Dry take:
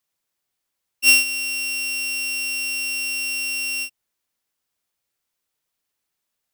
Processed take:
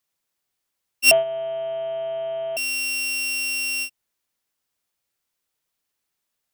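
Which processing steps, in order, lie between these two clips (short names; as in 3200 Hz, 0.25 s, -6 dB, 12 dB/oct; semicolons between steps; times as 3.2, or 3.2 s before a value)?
1.11–2.57 inverted band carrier 3400 Hz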